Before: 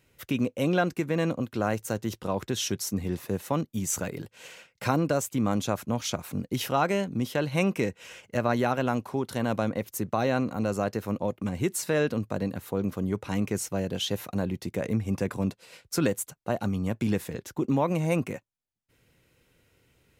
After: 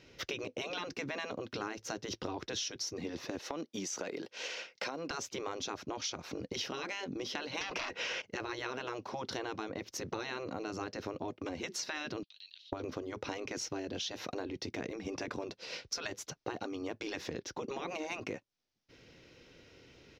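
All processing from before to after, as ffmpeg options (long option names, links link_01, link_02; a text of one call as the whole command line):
ffmpeg -i in.wav -filter_complex "[0:a]asettb=1/sr,asplit=3[link_01][link_02][link_03];[link_01]atrim=end=3.394[link_04];[link_02]atrim=start=3.39:end=5.11,asetpts=PTS-STARTPTS,afade=type=in:duration=0.004:curve=qsin,afade=type=out:start_time=1.716:duration=0.004:curve=qsin,highpass=340,equalizer=frequency=8800:width=3.6:gain=3.5,acompressor=threshold=-32dB:ratio=4:attack=3.2:release=140:knee=1:detection=peak[link_05];[link_03]atrim=start=5.106[link_06];[link_04][link_05]acrossfade=duration=0.004:curve1=hsin:curve2=qsin[link_07];[link_07][link_06]acrossfade=duration=0.004:curve1=qsin:curve2=hsin,asettb=1/sr,asplit=3[link_08][link_09][link_10];[link_08]atrim=end=7.614[link_11];[link_09]atrim=start=7.61:end=8.22,asetpts=PTS-STARTPTS,afade=type=in:duration=0.004:curve=qsin,afade=type=out:start_time=0.606:duration=0.004:curve=qsin,lowshelf=frequency=130:gain=11,asplit=2[link_12][link_13];[link_13]highpass=frequency=720:poles=1,volume=26dB,asoftclip=type=tanh:threshold=-11.5dB[link_14];[link_12][link_14]amix=inputs=2:normalize=0,lowpass=frequency=2300:poles=1,volume=-6dB[link_15];[link_10]atrim=start=8.216[link_16];[link_11][link_15]acrossfade=duration=0.004:curve1=hsin:curve2=qsin[link_17];[link_17][link_16]acrossfade=duration=0.004:curve1=qsin:curve2=hsin,asettb=1/sr,asplit=3[link_18][link_19][link_20];[link_18]atrim=end=12.234[link_21];[link_19]atrim=start=12.23:end=12.73,asetpts=PTS-STARTPTS,afade=type=in:duration=0.004:curve=qsin,afade=type=out:start_time=0.496:duration=0.004:curve=qsin,aemphasis=mode=production:type=riaa,acompressor=threshold=-43dB:ratio=4:attack=3.2:release=140:knee=1:detection=peak,asuperpass=centerf=3500:order=4:qfactor=2.7[link_22];[link_20]atrim=start=12.726[link_23];[link_21][link_22]acrossfade=duration=0.004:curve1=hsin:curve2=qsin[link_24];[link_24][link_23]acrossfade=duration=0.004:curve1=qsin:curve2=hsin,afftfilt=real='re*lt(hypot(re,im),0.158)':imag='im*lt(hypot(re,im),0.158)':win_size=1024:overlap=0.75,firequalizer=gain_entry='entry(120,0);entry(300,8);entry(1000,3);entry(5700,10);entry(8300,-17)':delay=0.05:min_phase=1,acompressor=threshold=-39dB:ratio=6,volume=2.5dB" out.wav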